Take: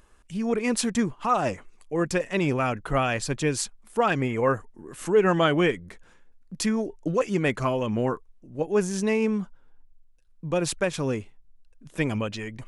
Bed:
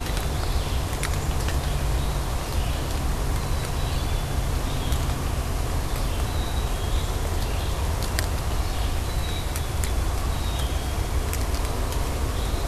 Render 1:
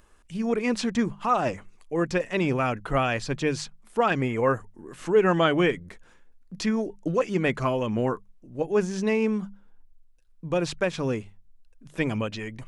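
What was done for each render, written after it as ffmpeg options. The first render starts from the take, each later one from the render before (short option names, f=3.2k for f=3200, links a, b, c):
-filter_complex "[0:a]bandreject=f=50:t=h:w=6,bandreject=f=100:t=h:w=6,bandreject=f=150:t=h:w=6,bandreject=f=200:t=h:w=6,acrossover=split=6100[a][b];[b]acompressor=threshold=-55dB:ratio=4:attack=1:release=60[c];[a][c]amix=inputs=2:normalize=0"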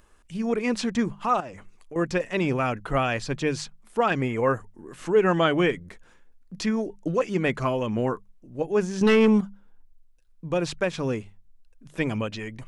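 -filter_complex "[0:a]asettb=1/sr,asplit=3[a][b][c];[a]atrim=end=1.404[d];[b]atrim=start=1.4:end=1.96,asetpts=PTS-STARTPTS,afade=t=in:d=0.004:c=qsin,afade=t=out:st=0.556:d=0.004:c=qsin,acompressor=threshold=-37dB:ratio=4:attack=3.2:release=140:knee=1:detection=peak[e];[c]atrim=start=1.956[f];[d][e]acrossfade=d=0.004:c1=hsin:c2=qsin[g];[g][f]acrossfade=d=0.004:c1=qsin:c2=hsin,asettb=1/sr,asplit=3[h][i][j];[h]atrim=end=9.014[k];[i]atrim=start=9.01:end=9.41,asetpts=PTS-STARTPTS,afade=t=in:d=0.004:c=qsin,afade=t=out:st=0.396:d=0.004:c=qsin,aeval=exprs='0.224*sin(PI/2*1.78*val(0)/0.224)':c=same[l];[j]atrim=start=9.406[m];[k][l]acrossfade=d=0.004:c1=hsin:c2=qsin[n];[n][m]acrossfade=d=0.004:c1=qsin:c2=hsin"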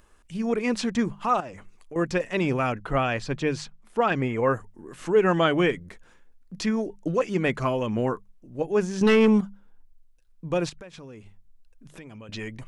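-filter_complex "[0:a]asettb=1/sr,asplit=3[a][b][c];[a]atrim=end=2.724[d];[b]atrim=start=2.72:end=4.52,asetpts=PTS-STARTPTS,afade=t=in:d=0.004:c=qsin,afade=t=out:st=1.796:d=0.004:c=qsin,highshelf=f=6.7k:g=-8.5[e];[c]atrim=start=4.516[f];[d][e]acrossfade=d=0.004:c1=hsin:c2=qsin[g];[g][f]acrossfade=d=0.004:c1=qsin:c2=hsin,asettb=1/sr,asplit=3[h][i][j];[h]atrim=end=10.694[k];[i]atrim=start=10.69:end=12.29,asetpts=PTS-STARTPTS,afade=t=in:d=0.004:c=qsin,afade=t=out:st=1.596:d=0.004:c=qsin,acompressor=threshold=-41dB:ratio=6:attack=3.2:release=140:knee=1:detection=peak[l];[j]atrim=start=12.286[m];[k][l]acrossfade=d=0.004:c1=hsin:c2=qsin[n];[n][m]acrossfade=d=0.004:c1=qsin:c2=hsin"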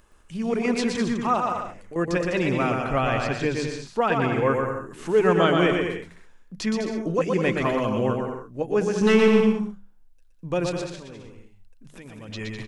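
-af "aecho=1:1:120|204|262.8|304|332.8:0.631|0.398|0.251|0.158|0.1"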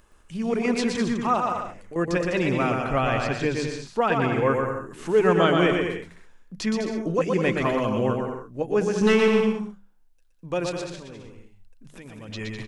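-filter_complex "[0:a]asettb=1/sr,asplit=3[a][b][c];[a]atrim=end=9.134[d];[b]atrim=start=9.13:end=10.87,asetpts=PTS-STARTPTS,afade=t=in:d=0.004:c=qsin,afade=t=out:st=1.736:d=0.004:c=qsin,lowshelf=f=250:g=-6.5[e];[c]atrim=start=10.866[f];[d][e]acrossfade=d=0.004:c1=hsin:c2=qsin[g];[g][f]acrossfade=d=0.004:c1=qsin:c2=hsin"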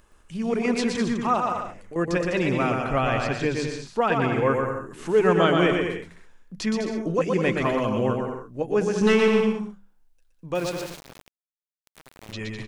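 -filter_complex "[0:a]asettb=1/sr,asplit=3[a][b][c];[a]atrim=end=10.554[d];[b]atrim=start=10.55:end=12.33,asetpts=PTS-STARTPTS,afade=t=in:d=0.004:c=qsin,afade=t=out:st=1.776:d=0.004:c=qsin,aeval=exprs='val(0)*gte(abs(val(0)),0.0188)':c=same[e];[c]atrim=start=12.326[f];[d][e]acrossfade=d=0.004:c1=hsin:c2=qsin[g];[g][f]acrossfade=d=0.004:c1=qsin:c2=hsin"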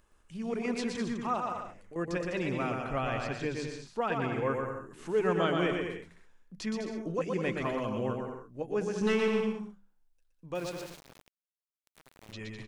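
-af "volume=-9dB"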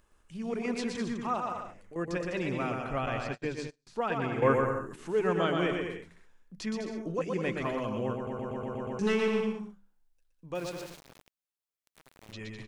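-filter_complex "[0:a]asettb=1/sr,asplit=3[a][b][c];[a]atrim=end=3.064[d];[b]atrim=start=3.06:end=3.87,asetpts=PTS-STARTPTS,afade=t=in:d=0.004:c=qsin,afade=t=out:st=0.806:d=0.004:c=qsin,agate=range=-37dB:threshold=-37dB:ratio=16:release=100:detection=peak[e];[c]atrim=start=3.866[f];[d][e]acrossfade=d=0.004:c1=hsin:c2=qsin[g];[g][f]acrossfade=d=0.004:c1=qsin:c2=hsin,asettb=1/sr,asplit=3[h][i][j];[h]atrim=end=4.424[k];[i]atrim=start=4.42:end=4.96,asetpts=PTS-STARTPTS,afade=t=in:d=0.004:c=qsin,afade=t=out:st=0.536:d=0.004:c=qsin,acontrast=70[l];[j]atrim=start=4.956[m];[k][l]acrossfade=d=0.004:c1=hsin:c2=qsin[n];[n][m]acrossfade=d=0.004:c1=qsin:c2=hsin,asplit=8[o][p][q][r][s][t][u][v];[o]atrim=end=8.272[w];[p]atrim=start=8.148:end=8.272[x];[q]atrim=start=8.148:end=8.272[y];[r]atrim=start=8.148:end=8.272[z];[s]atrim=start=8.148:end=8.272[aa];[t]atrim=start=8.148:end=8.272[ab];[u]atrim=start=8.148:end=8.272[ac];[v]atrim=start=8.988[ad];[w][x]acrossfade=d=0.004:c1=hsin:c2=hsin[ae];[ae][y]acrossfade=d=0.004:c1=hsin:c2=hsin[af];[af][z]acrossfade=d=0.004:c1=hsin:c2=hsin[ag];[ag][aa]acrossfade=d=0.004:c1=hsin:c2=hsin[ah];[ah][ab]acrossfade=d=0.004:c1=hsin:c2=hsin[ai];[ai][ac]acrossfade=d=0.004:c1=hsin:c2=hsin[aj];[aj][ad]acrossfade=d=0.004:c1=hsin:c2=hsin"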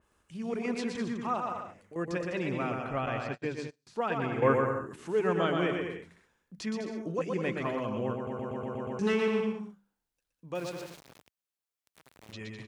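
-af "highpass=61,adynamicequalizer=threshold=0.00355:dfrequency=3600:dqfactor=0.7:tfrequency=3600:tqfactor=0.7:attack=5:release=100:ratio=0.375:range=3:mode=cutabove:tftype=highshelf"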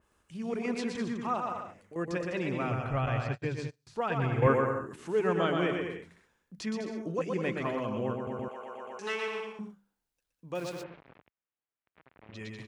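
-filter_complex "[0:a]asettb=1/sr,asplit=3[a][b][c];[a]atrim=end=2.684[d];[b]atrim=start=2.68:end=4.47,asetpts=PTS-STARTPTS,afade=t=in:d=0.004:c=qsin,afade=t=out:st=1.786:d=0.004:c=qsin,lowshelf=f=160:t=q:w=1.5:g=8[e];[c]atrim=start=4.466[f];[d][e]acrossfade=d=0.004:c1=hsin:c2=qsin[g];[g][f]acrossfade=d=0.004:c1=qsin:c2=hsin,asettb=1/sr,asplit=3[h][i][j];[h]atrim=end=8.484[k];[i]atrim=start=8.48:end=9.59,asetpts=PTS-STARTPTS,afade=t=in:d=0.004:c=qsin,afade=t=out:st=1.106:d=0.004:c=qsin,highpass=650[l];[j]atrim=start=9.586[m];[k][l]acrossfade=d=0.004:c1=hsin:c2=qsin[n];[n][m]acrossfade=d=0.004:c1=qsin:c2=hsin,asplit=3[o][p][q];[o]afade=t=out:st=10.82:d=0.02[r];[p]lowpass=f=2.5k:w=0.5412,lowpass=f=2.5k:w=1.3066,afade=t=in:st=10.82:d=0.02,afade=t=out:st=12.34:d=0.02[s];[q]afade=t=in:st=12.34:d=0.02[t];[r][s][t]amix=inputs=3:normalize=0"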